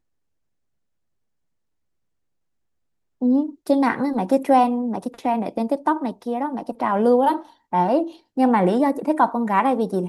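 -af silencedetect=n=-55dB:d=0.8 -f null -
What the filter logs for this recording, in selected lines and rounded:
silence_start: 0.00
silence_end: 3.21 | silence_duration: 3.21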